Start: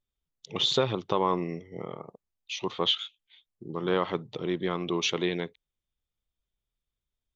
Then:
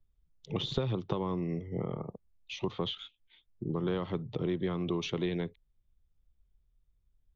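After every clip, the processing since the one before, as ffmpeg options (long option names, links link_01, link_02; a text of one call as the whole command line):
ffmpeg -i in.wav -filter_complex "[0:a]acrossover=split=100|380|3200[link_01][link_02][link_03][link_04];[link_01]acompressor=threshold=-58dB:ratio=4[link_05];[link_02]acompressor=threshold=-41dB:ratio=4[link_06];[link_03]acompressor=threshold=-39dB:ratio=4[link_07];[link_04]acompressor=threshold=-33dB:ratio=4[link_08];[link_05][link_06][link_07][link_08]amix=inputs=4:normalize=0,aemphasis=mode=reproduction:type=riaa" out.wav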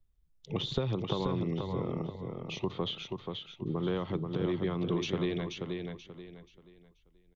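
ffmpeg -i in.wav -af "aecho=1:1:482|964|1446|1928:0.562|0.169|0.0506|0.0152" out.wav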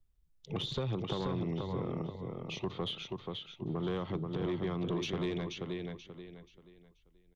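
ffmpeg -i in.wav -af "asoftclip=type=tanh:threshold=-25.5dB,volume=-1dB" out.wav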